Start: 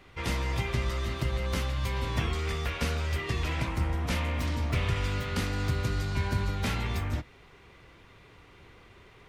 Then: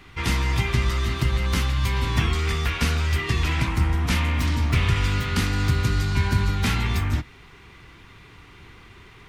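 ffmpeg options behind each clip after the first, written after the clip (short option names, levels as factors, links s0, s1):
-af "equalizer=f=560:w=2:g=-11,volume=2.51"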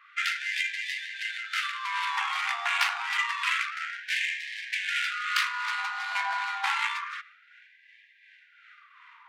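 -filter_complex "[0:a]acrossover=split=1100[s0][s1];[s0]aeval=exprs='val(0)*(1-0.5/2+0.5/2*cos(2*PI*2.7*n/s))':c=same[s2];[s1]aeval=exprs='val(0)*(1-0.5/2-0.5/2*cos(2*PI*2.7*n/s))':c=same[s3];[s2][s3]amix=inputs=2:normalize=0,adynamicsmooth=sensitivity=2.5:basefreq=1600,afftfilt=real='re*gte(b*sr/1024,680*pow(1600/680,0.5+0.5*sin(2*PI*0.28*pts/sr)))':imag='im*gte(b*sr/1024,680*pow(1600/680,0.5+0.5*sin(2*PI*0.28*pts/sr)))':win_size=1024:overlap=0.75,volume=2.11"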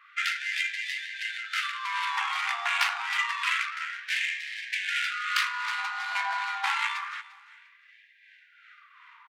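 -af "aecho=1:1:348|696:0.1|0.027"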